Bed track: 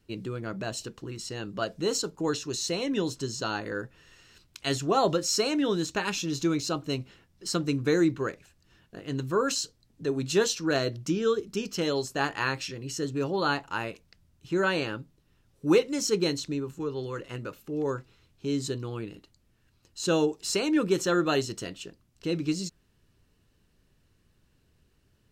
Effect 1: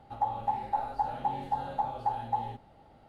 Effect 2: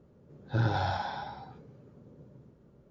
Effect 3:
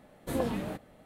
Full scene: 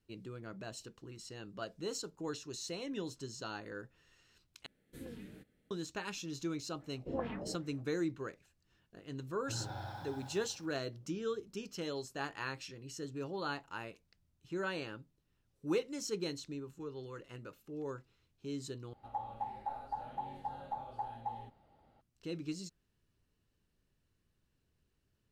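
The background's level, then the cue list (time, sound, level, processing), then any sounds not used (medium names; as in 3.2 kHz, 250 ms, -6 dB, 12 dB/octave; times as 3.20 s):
bed track -12 dB
4.66 s: replace with 3 -15.5 dB + high-order bell 840 Hz -14.5 dB 1.3 oct
6.79 s: add 3 -9.5 dB + LFO low-pass sine 2.5 Hz 420–2700 Hz
8.95 s: add 2 -15.5 dB + bit-crushed delay 93 ms, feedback 80%, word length 8-bit, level -7 dB
18.93 s: replace with 1 -10 dB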